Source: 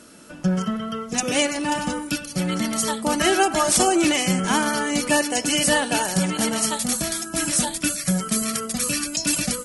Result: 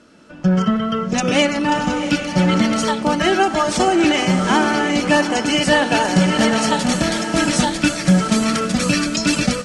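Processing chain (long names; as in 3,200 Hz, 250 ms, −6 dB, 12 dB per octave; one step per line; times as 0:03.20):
high-frequency loss of the air 120 metres
feedback delay with all-pass diffusion 724 ms, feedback 40%, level −10 dB
automatic gain control gain up to 12 dB
level −1 dB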